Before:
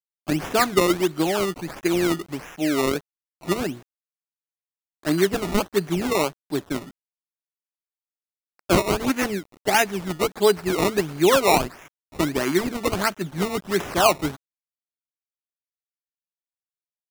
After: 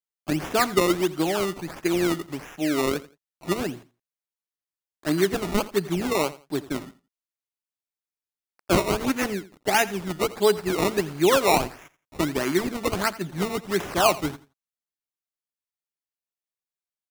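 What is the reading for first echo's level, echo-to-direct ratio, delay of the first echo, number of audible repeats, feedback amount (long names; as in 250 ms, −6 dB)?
−18.0 dB, −18.0 dB, 85 ms, 2, 22%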